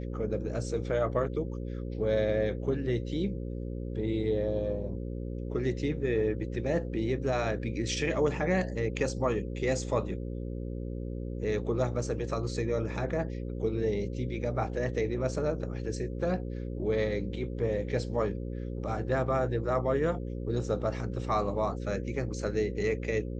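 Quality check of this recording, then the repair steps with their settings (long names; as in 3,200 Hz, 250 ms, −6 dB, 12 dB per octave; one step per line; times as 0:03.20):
mains buzz 60 Hz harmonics 9 −36 dBFS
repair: hum removal 60 Hz, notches 9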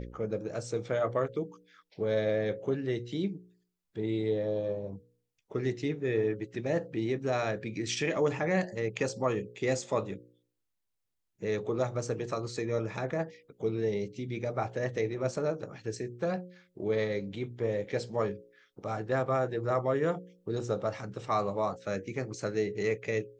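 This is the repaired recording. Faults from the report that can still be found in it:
none of them is left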